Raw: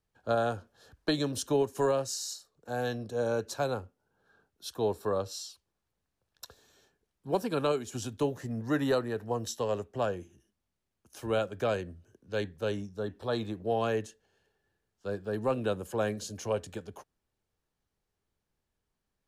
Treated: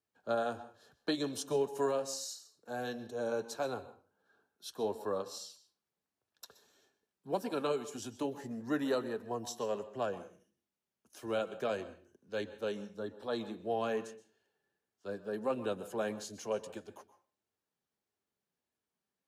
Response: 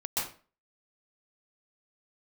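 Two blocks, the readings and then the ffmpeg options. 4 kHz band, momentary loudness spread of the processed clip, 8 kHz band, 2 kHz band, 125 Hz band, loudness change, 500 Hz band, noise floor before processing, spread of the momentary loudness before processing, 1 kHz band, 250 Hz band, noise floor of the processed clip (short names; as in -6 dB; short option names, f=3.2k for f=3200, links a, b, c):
-5.0 dB, 15 LU, -4.5 dB, -5.0 dB, -12.5 dB, -5.0 dB, -4.5 dB, -84 dBFS, 13 LU, -4.5 dB, -5.0 dB, under -85 dBFS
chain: -filter_complex "[0:a]highpass=160,flanger=delay=2.8:depth=2.4:regen=-49:speed=1.6:shape=sinusoidal,asplit=2[a][b];[1:a]atrim=start_sample=2205[c];[b][c]afir=irnorm=-1:irlink=0,volume=-19.5dB[d];[a][d]amix=inputs=2:normalize=0,volume=-1.5dB"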